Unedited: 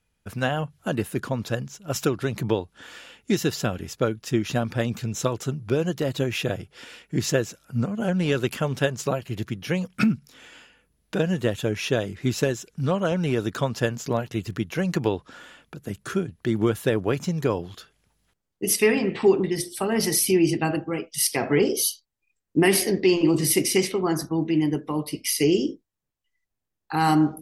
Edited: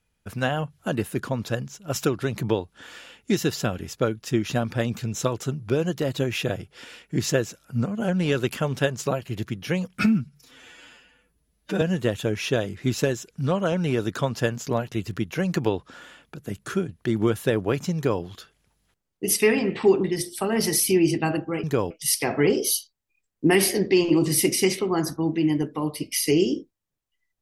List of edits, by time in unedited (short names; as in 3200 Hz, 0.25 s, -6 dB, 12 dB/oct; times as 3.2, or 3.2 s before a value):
10–11.21 stretch 1.5×
17.35–17.62 copy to 21.03